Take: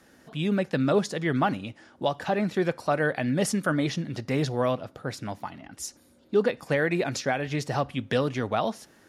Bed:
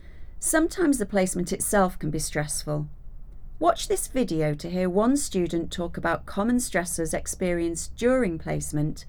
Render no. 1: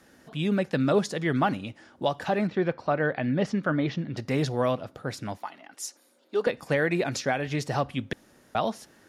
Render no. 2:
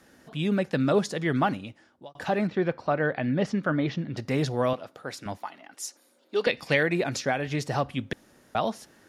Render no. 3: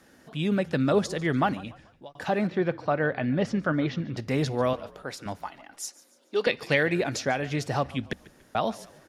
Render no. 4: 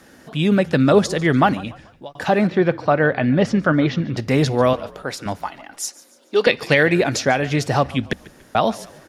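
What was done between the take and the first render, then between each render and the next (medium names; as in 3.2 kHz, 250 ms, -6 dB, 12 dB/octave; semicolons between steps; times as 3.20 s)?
2.47–4.17 s: distance through air 210 m; 5.37–6.47 s: high-pass 460 Hz; 8.13–8.55 s: room tone
1.45–2.15 s: fade out; 4.73–5.26 s: high-pass 450 Hz 6 dB/octave; 6.36–6.83 s: high-order bell 3.3 kHz +9.5 dB
frequency-shifting echo 144 ms, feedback 41%, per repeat -36 Hz, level -20 dB
trim +9 dB; peak limiter -2 dBFS, peak gain reduction 3 dB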